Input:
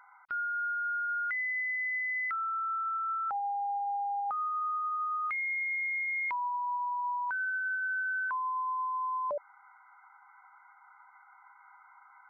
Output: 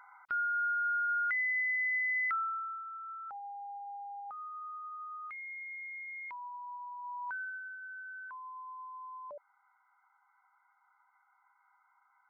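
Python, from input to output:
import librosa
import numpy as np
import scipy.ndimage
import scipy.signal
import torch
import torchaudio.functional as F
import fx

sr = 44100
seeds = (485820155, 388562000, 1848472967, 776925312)

y = fx.gain(x, sr, db=fx.line((2.35, 1.0), (2.86, -11.0), (6.98, -11.0), (7.32, -5.0), (7.74, -13.0)))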